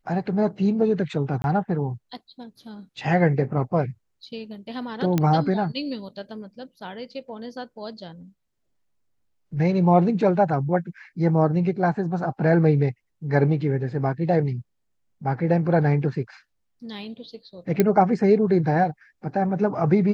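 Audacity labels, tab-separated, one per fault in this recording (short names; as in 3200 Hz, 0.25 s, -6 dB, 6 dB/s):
1.420000	1.440000	gap 21 ms
5.180000	5.180000	pop -9 dBFS
17.800000	17.800000	pop -6 dBFS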